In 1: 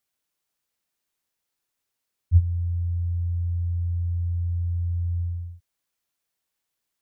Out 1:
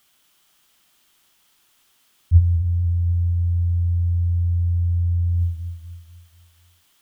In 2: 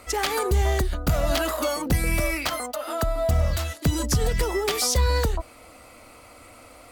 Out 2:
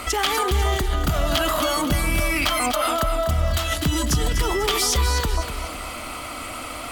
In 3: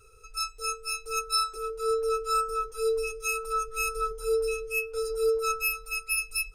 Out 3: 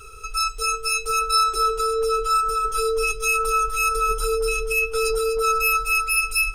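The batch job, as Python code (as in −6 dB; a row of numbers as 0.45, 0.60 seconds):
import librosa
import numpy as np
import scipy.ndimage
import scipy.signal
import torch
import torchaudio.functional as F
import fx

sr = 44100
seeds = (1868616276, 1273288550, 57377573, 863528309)

p1 = fx.graphic_eq_31(x, sr, hz=(100, 500, 1250, 3150), db=(-6, -8, 4, 8))
p2 = fx.over_compress(p1, sr, threshold_db=-35.0, ratio=-1.0)
p3 = p1 + (p2 * librosa.db_to_amplitude(3.0))
p4 = fx.echo_feedback(p3, sr, ms=247, feedback_pct=42, wet_db=-9.0)
y = p4 * 10.0 ** (-22 / 20.0) / np.sqrt(np.mean(np.square(p4)))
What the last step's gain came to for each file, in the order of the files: +6.0, −0.5, +3.0 decibels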